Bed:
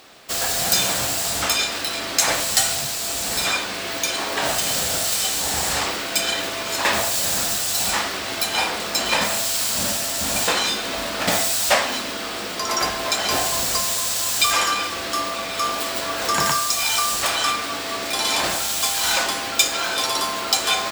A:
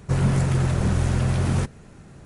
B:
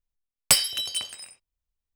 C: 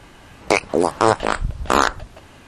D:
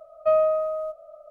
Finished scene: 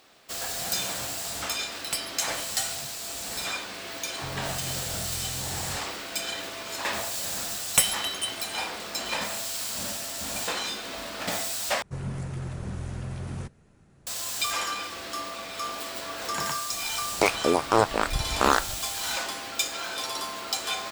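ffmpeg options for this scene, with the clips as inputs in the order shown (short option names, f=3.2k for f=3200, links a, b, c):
-filter_complex "[2:a]asplit=2[a][b];[1:a]asplit=2[c][d];[0:a]volume=-10dB[e];[b]asuperstop=centerf=4700:order=4:qfactor=2.9[f];[e]asplit=2[g][h];[g]atrim=end=11.824[i];[d]atrim=end=2.25,asetpts=PTS-STARTPTS,volume=-13dB[j];[h]atrim=start=14.066[k];[a]atrim=end=1.95,asetpts=PTS-STARTPTS,volume=-12.5dB,afade=t=in:d=0.004:c=hsin,afade=t=out:st=1.946:d=0.004:c=hsin,adelay=1420[l];[c]atrim=end=2.25,asetpts=PTS-STARTPTS,volume=-18dB,afade=t=in:d=0.004:c=hsin,afade=t=out:st=2.246:d=0.004:c=hsin,adelay=182133S[m];[f]atrim=end=1.95,asetpts=PTS-STARTPTS,volume=-1dB,afade=t=in:d=0.004:c=hsin,afade=t=out:st=1.946:d=0.004:c=hsin,adelay=7270[n];[3:a]atrim=end=2.47,asetpts=PTS-STARTPTS,volume=-5.5dB,afade=t=in:d=0.004:c=hsin,afade=t=out:st=2.466:d=0.004:c=hsin,adelay=16710[o];[i][j]acrossfade=d=0.004:c1=hsin:c2=hsin[p];[p][k]acrossfade=d=0.004:c1=hsin:c2=hsin[q];[q][l][m][n][o]amix=inputs=5:normalize=0"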